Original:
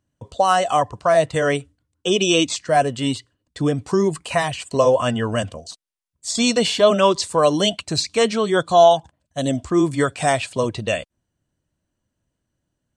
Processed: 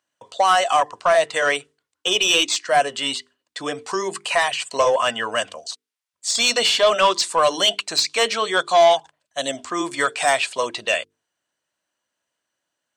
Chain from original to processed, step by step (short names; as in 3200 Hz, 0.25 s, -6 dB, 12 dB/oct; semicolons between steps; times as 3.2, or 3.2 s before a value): HPF 330 Hz 6 dB/oct; low shelf 450 Hz -9.5 dB; notches 50/100/150/200/250/300/350/400/450 Hz; overdrive pedal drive 12 dB, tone 5600 Hz, clips at -6 dBFS